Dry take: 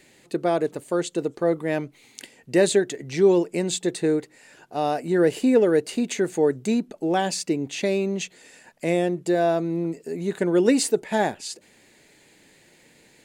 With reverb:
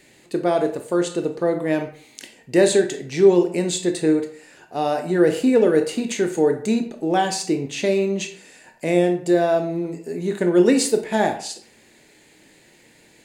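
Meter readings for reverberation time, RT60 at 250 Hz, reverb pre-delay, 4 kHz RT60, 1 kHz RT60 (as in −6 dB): 0.50 s, 0.55 s, 19 ms, 0.40 s, 0.50 s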